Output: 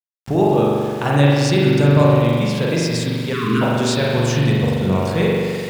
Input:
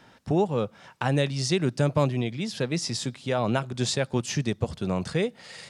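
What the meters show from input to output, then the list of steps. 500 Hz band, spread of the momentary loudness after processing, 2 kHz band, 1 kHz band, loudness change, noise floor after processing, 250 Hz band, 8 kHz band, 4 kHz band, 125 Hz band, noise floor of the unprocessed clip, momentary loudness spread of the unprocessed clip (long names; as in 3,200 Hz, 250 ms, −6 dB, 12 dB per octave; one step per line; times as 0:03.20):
+10.0 dB, 7 LU, +10.0 dB, +10.0 dB, +10.0 dB, −28 dBFS, +10.5 dB, +4.0 dB, +7.0 dB, +11.5 dB, −56 dBFS, 6 LU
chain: spring reverb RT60 2.1 s, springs 42 ms, chirp 25 ms, DRR −5.5 dB
time-frequency box erased 0:03.33–0:03.62, 460–1,000 Hz
centre clipping without the shift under −37 dBFS
level +3.5 dB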